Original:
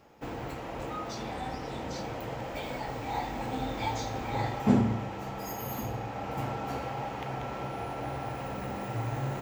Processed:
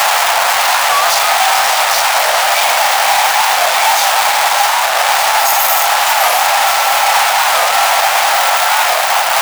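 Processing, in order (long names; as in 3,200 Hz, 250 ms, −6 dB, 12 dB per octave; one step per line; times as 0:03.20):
sign of each sample alone
Butterworth high-pass 650 Hz 48 dB per octave
soft clipping −25.5 dBFS, distortion −23 dB
delay that swaps between a low-pass and a high-pass 303 ms, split 1,500 Hz, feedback 81%, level −5.5 dB
boost into a limiter +32.5 dB
wow of a warped record 45 rpm, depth 160 cents
level −1.5 dB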